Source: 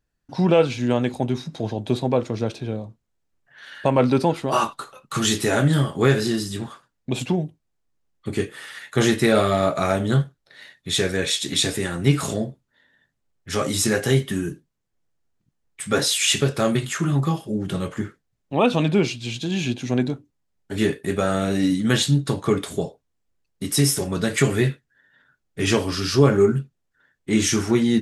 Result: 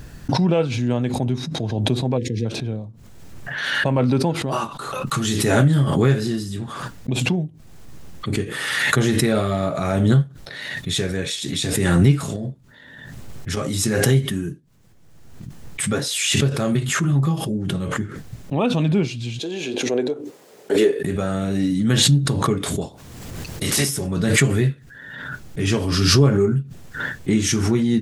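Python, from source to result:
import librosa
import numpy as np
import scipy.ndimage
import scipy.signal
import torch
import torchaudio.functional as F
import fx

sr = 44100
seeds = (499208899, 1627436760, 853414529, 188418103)

y = fx.spec_erase(x, sr, start_s=2.18, length_s=0.28, low_hz=520.0, high_hz=1600.0)
y = fx.over_compress(y, sr, threshold_db=-29.0, ratio=-1.0, at=(12.36, 13.57))
y = fx.highpass_res(y, sr, hz=440.0, q=3.8, at=(19.38, 20.98), fade=0.02)
y = fx.spec_clip(y, sr, under_db=21, at=(22.81, 23.88), fade=0.02)
y = fx.peak_eq(y, sr, hz=120.0, db=8.0, octaves=2.2)
y = fx.pre_swell(y, sr, db_per_s=31.0)
y = y * 10.0 ** (-5.0 / 20.0)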